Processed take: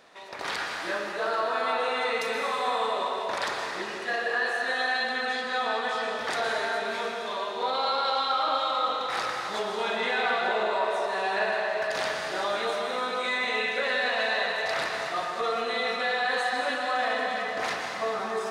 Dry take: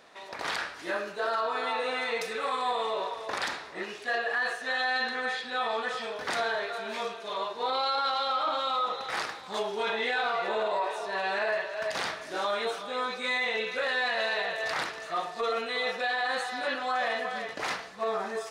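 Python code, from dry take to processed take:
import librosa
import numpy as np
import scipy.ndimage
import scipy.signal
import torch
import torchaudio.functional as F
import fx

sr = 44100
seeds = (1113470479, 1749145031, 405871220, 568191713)

y = fx.rev_plate(x, sr, seeds[0], rt60_s=2.8, hf_ratio=0.8, predelay_ms=105, drr_db=0.5)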